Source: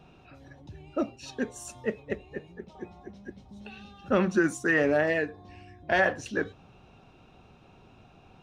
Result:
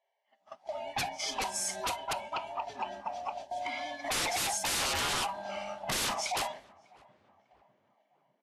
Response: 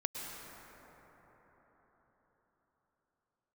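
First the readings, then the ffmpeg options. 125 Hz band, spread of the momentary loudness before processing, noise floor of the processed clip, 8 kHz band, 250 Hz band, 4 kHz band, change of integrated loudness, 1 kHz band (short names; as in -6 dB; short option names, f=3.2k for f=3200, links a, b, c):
-10.0 dB, 22 LU, -77 dBFS, +11.5 dB, -16.5 dB, +12.0 dB, -5.0 dB, +3.0 dB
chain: -filter_complex "[0:a]afftfilt=real='real(if(lt(b,1008),b+24*(1-2*mod(floor(b/24),2)),b),0)':imag='imag(if(lt(b,1008),b+24*(1-2*mod(floor(b/24),2)),b),0)':win_size=2048:overlap=0.75,aeval=exprs='val(0)+0.000708*(sin(2*PI*60*n/s)+sin(2*PI*2*60*n/s)/2+sin(2*PI*3*60*n/s)/3+sin(2*PI*4*60*n/s)/4+sin(2*PI*5*60*n/s)/5)':c=same,dynaudnorm=f=310:g=5:m=5dB,highpass=f=520:p=1,aeval=exprs='(mod(7.94*val(0)+1,2)-1)/7.94':c=same,bandreject=f=3.7k:w=23,aeval=exprs='0.158*sin(PI/2*3.98*val(0)/0.158)':c=same,agate=range=-36dB:threshold=-31dB:ratio=16:detection=peak,acompressor=threshold=-34dB:ratio=2,asplit=2[a][b];[b]adelay=599,lowpass=f=1.3k:p=1,volume=-23dB,asplit=2[c][d];[d]adelay=599,lowpass=f=1.3k:p=1,volume=0.55,asplit=2[e][f];[f]adelay=599,lowpass=f=1.3k:p=1,volume=0.55,asplit=2[g][h];[h]adelay=599,lowpass=f=1.3k:p=1,volume=0.55[i];[a][c][e][g][i]amix=inputs=5:normalize=0,volume=-4dB" -ar 32000 -c:a libvorbis -b:a 32k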